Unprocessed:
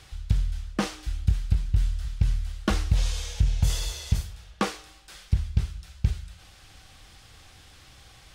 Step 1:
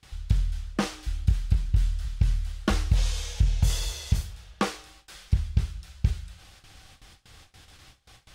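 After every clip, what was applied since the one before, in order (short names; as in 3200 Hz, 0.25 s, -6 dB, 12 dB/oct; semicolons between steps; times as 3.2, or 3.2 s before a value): gate with hold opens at -40 dBFS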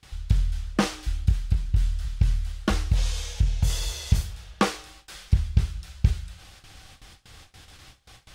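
vocal rider within 5 dB 0.5 s; gain +1.5 dB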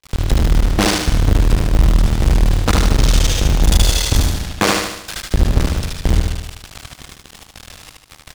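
cycle switcher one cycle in 2, muted; sample leveller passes 5; on a send: feedback echo 75 ms, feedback 51%, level -3 dB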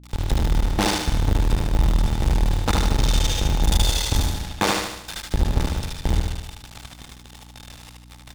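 small resonant body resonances 860/3600 Hz, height 10 dB; hum 60 Hz, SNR 25 dB; gain -6.5 dB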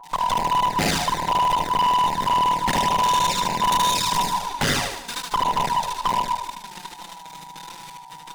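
band inversion scrambler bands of 1000 Hz; envelope flanger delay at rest 7.6 ms, full sweep at -14.5 dBFS; overloaded stage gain 22 dB; gain +5.5 dB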